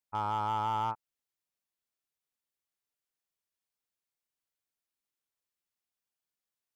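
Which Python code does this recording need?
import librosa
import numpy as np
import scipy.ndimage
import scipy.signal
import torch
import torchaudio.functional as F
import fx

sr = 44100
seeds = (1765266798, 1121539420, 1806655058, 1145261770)

y = fx.fix_declip(x, sr, threshold_db=-25.0)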